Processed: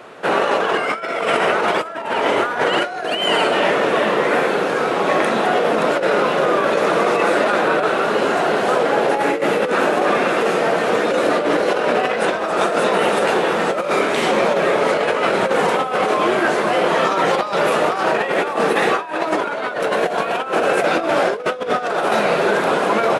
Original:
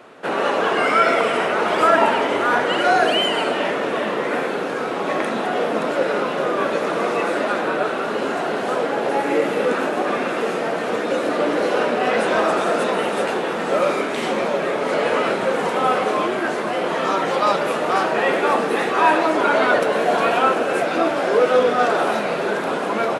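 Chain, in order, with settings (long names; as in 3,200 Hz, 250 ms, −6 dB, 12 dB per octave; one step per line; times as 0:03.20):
parametric band 260 Hz −5 dB 0.46 octaves
compressor whose output falls as the input rises −21 dBFS, ratio −0.5
level +4 dB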